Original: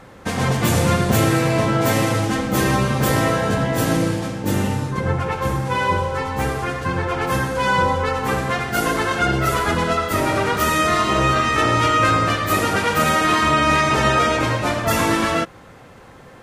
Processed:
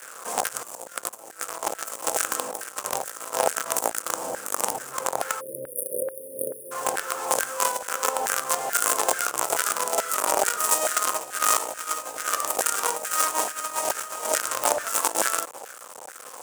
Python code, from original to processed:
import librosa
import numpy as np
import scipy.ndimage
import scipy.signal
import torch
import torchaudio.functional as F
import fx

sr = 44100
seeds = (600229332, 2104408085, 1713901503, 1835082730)

y = fx.quant_companded(x, sr, bits=2)
y = fx.graphic_eq(y, sr, hz=(125, 250, 500, 1000, 2000, 4000, 8000), db=(12, 7, 11, -7, -9, -10, 10))
y = fx.over_compress(y, sr, threshold_db=-11.0, ratio=-0.5)
y = fx.spec_erase(y, sr, start_s=5.41, length_s=1.31, low_hz=620.0, high_hz=9200.0)
y = fx.filter_lfo_highpass(y, sr, shape='saw_down', hz=2.3, low_hz=780.0, high_hz=1600.0, q=4.0)
y = F.gain(torch.from_numpy(y), -9.5).numpy()